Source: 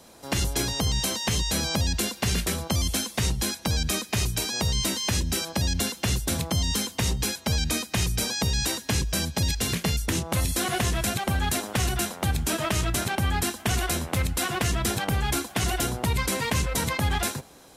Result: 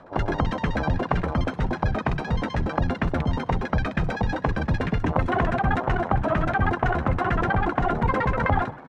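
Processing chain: LFO low-pass saw down 7.8 Hz 650–1800 Hz; frequency-shifting echo 0.334 s, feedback 45%, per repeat +61 Hz, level -21 dB; granular stretch 0.5×, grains 23 ms; gain +4 dB

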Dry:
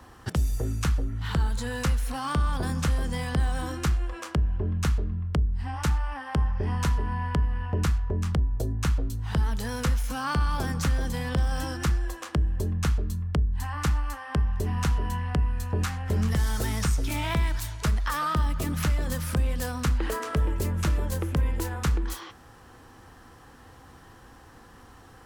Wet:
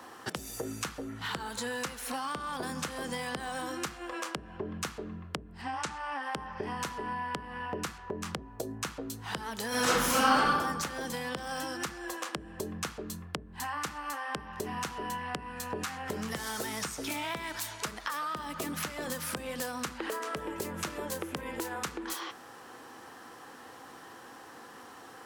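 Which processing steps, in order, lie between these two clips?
HPF 290 Hz 12 dB/oct; compressor 10:1, threshold -36 dBFS, peak gain reduction 12 dB; 5.62–6.23 LPF 9100 Hz 24 dB/oct; 9.68–10.46 reverb throw, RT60 1.2 s, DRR -11.5 dB; gain +4 dB

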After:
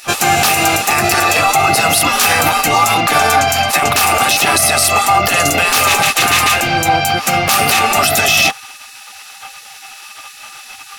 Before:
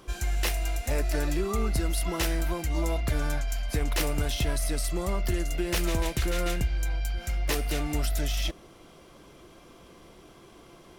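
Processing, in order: spectral gate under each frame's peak -20 dB weak; small resonant body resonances 790/1200/2600 Hz, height 17 dB, ringing for 90 ms; maximiser +28 dB; gain -1 dB

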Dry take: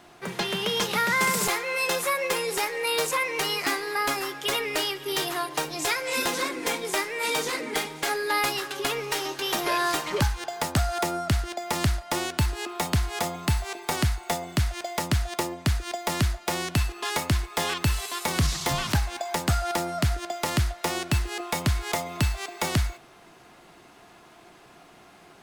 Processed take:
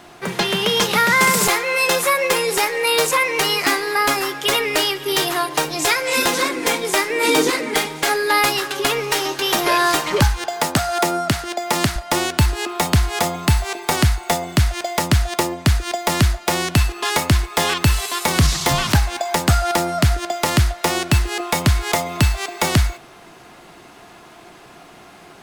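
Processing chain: 7.1–7.51 bell 310 Hz +13 dB 0.75 oct; 10.46–11.96 HPF 150 Hz 12 dB/oct; gain +8.5 dB

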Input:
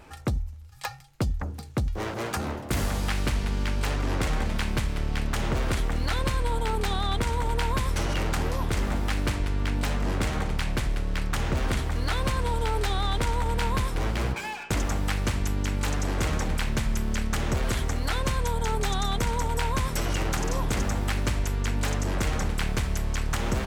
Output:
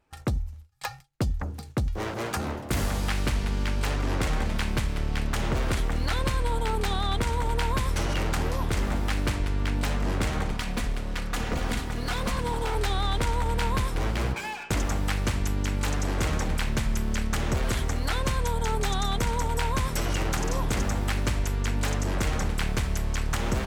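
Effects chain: 10.52–12.75 minimum comb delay 4.1 ms; gate with hold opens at -34 dBFS

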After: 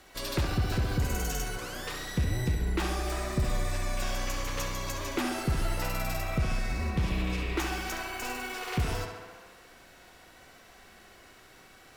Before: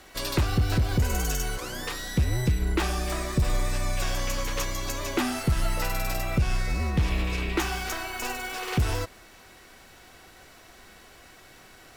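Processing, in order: tape echo 67 ms, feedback 80%, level -4.5 dB, low-pass 4600 Hz; gain -5 dB

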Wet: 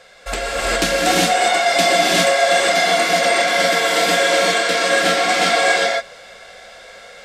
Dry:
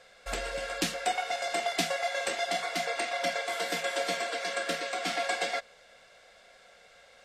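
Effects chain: non-linear reverb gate 0.43 s rising, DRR -6 dB; added harmonics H 5 -30 dB, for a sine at -11 dBFS; gain +8.5 dB

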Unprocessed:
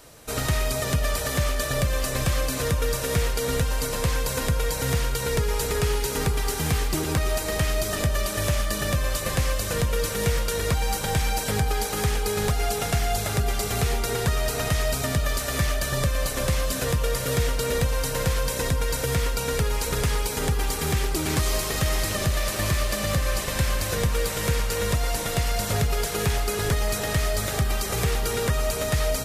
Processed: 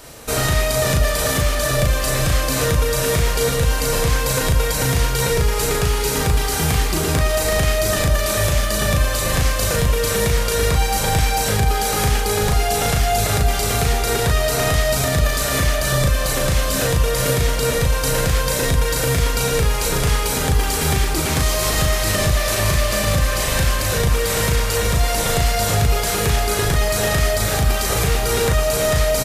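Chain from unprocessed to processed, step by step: limiter -18.5 dBFS, peak gain reduction 6.5 dB; doubler 37 ms -3 dB; gain +8 dB

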